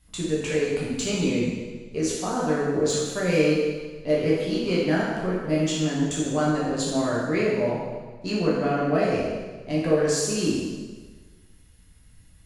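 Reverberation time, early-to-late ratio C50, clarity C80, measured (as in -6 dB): 1.4 s, -0.5 dB, 2.0 dB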